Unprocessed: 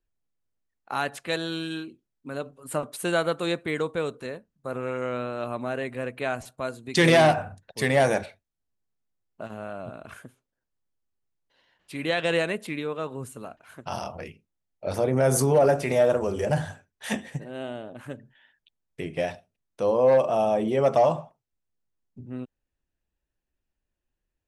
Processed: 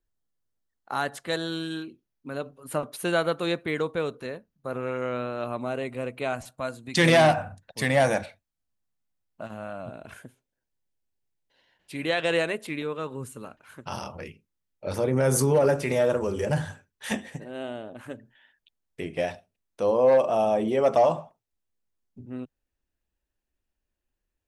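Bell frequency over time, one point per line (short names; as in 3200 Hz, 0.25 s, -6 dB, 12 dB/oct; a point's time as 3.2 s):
bell -10.5 dB 0.23 oct
2500 Hz
from 1.82 s 7900 Hz
from 5.58 s 1700 Hz
from 6.33 s 400 Hz
from 9.89 s 1200 Hz
from 12.02 s 190 Hz
from 12.82 s 690 Hz
from 17.11 s 140 Hz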